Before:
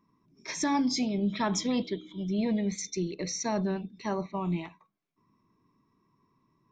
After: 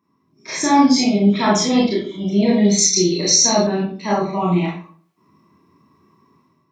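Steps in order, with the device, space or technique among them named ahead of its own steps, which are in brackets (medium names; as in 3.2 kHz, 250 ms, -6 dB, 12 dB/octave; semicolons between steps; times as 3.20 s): far laptop microphone (reverberation RT60 0.45 s, pre-delay 25 ms, DRR -5 dB; high-pass 110 Hz 12 dB/octave; level rider gain up to 10 dB); 2.64–3.67 s: resonant high shelf 3.1 kHz +8 dB, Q 1.5; trim -1 dB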